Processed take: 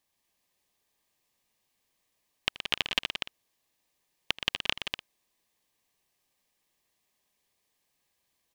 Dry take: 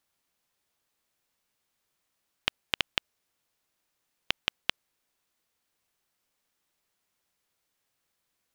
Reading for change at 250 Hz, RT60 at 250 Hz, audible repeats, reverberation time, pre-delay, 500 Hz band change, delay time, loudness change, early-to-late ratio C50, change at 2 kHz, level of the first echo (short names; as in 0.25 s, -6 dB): +2.5 dB, none, 5, none, none, +2.0 dB, 80 ms, +0.5 dB, none, +1.5 dB, -19.0 dB